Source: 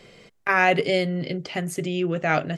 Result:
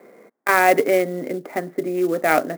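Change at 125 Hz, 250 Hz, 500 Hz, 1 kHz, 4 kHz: -7.5 dB, +2.0 dB, +5.5 dB, +5.0 dB, -5.0 dB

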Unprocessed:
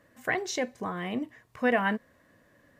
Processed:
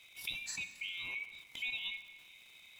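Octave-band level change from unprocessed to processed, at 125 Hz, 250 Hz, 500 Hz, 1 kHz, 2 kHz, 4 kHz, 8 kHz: -22.5 dB, -33.5 dB, -38.0 dB, -29.5 dB, -8.0 dB, +1.5 dB, -5.0 dB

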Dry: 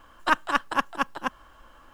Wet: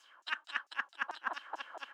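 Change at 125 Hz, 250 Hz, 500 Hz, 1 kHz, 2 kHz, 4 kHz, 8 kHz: under -25 dB, -26.0 dB, -16.5 dB, -15.0 dB, -8.5 dB, -8.5 dB, under -15 dB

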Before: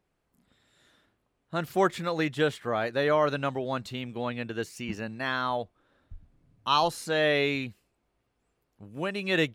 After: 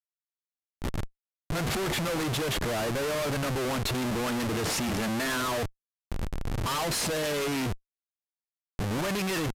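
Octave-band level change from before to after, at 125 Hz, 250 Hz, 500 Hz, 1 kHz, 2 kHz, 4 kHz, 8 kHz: +5.0 dB, +2.0 dB, -3.0 dB, -3.5 dB, -1.5 dB, +1.5 dB, +12.5 dB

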